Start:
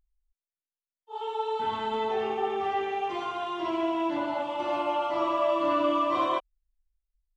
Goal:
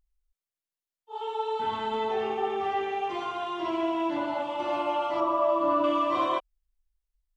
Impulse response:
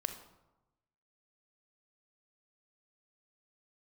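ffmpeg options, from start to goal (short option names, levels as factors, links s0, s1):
-filter_complex "[0:a]asettb=1/sr,asplit=3[s0][s1][s2];[s0]atrim=end=5.204[s3];[s1]atrim=start=5.2:end=5.84,asetpts=PTS-STARTPTS,afade=t=in:d=0.004:c=qsin,afade=t=out:st=0.636:d=0.004:c=qsin,highshelf=f=1500:t=q:w=1.5:g=-7[s4];[s2]atrim=start=5.836[s5];[s3][s4]acrossfade=d=0.004:c1=hsin:c2=qsin[s6];[s6][s5]acrossfade=d=0.004:c1=qsin:c2=hsin"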